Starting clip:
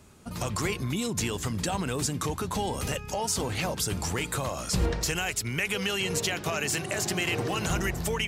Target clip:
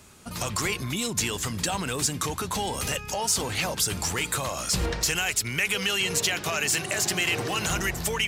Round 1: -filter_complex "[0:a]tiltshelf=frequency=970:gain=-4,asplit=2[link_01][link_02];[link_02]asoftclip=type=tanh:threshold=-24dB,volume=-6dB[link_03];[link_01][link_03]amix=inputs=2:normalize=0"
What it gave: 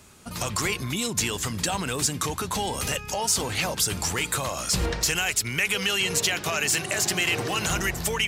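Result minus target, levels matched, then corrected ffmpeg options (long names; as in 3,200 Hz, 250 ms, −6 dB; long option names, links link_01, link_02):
soft clipping: distortion −6 dB
-filter_complex "[0:a]tiltshelf=frequency=970:gain=-4,asplit=2[link_01][link_02];[link_02]asoftclip=type=tanh:threshold=-32.5dB,volume=-6dB[link_03];[link_01][link_03]amix=inputs=2:normalize=0"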